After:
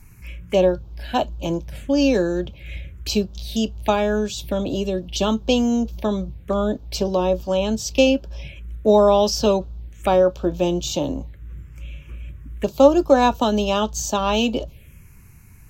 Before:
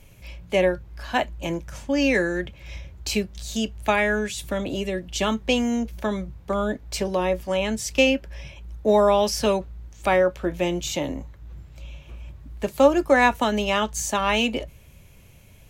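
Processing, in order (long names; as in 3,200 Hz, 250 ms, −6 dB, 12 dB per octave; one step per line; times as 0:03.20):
phaser swept by the level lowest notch 510 Hz, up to 2,000 Hz, full sweep at −26 dBFS
level +4.5 dB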